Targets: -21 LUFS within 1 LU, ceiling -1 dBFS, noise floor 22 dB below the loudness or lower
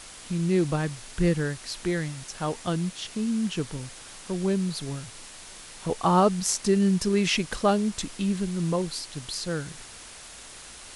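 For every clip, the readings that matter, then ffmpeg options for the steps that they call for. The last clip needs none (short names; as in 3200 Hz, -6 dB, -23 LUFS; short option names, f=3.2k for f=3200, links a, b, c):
noise floor -45 dBFS; noise floor target -49 dBFS; loudness -27.0 LUFS; peak -9.5 dBFS; loudness target -21.0 LUFS
-> -af "afftdn=nr=6:nf=-45"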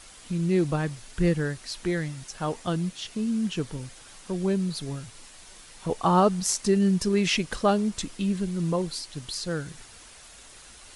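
noise floor -49 dBFS; loudness -27.0 LUFS; peak -9.5 dBFS; loudness target -21.0 LUFS
-> -af "volume=6dB"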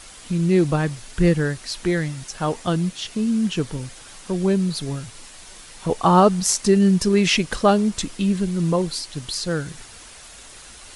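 loudness -21.0 LUFS; peak -3.5 dBFS; noise floor -43 dBFS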